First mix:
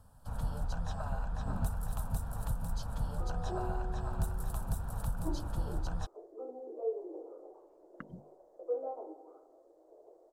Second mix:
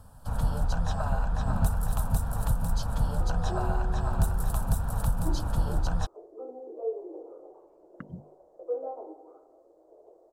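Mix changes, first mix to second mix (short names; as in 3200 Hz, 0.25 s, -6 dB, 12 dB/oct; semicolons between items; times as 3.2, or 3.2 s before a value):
speech: add bell 95 Hz +10 dB 2.7 oct; first sound +8.5 dB; second sound: send +11.5 dB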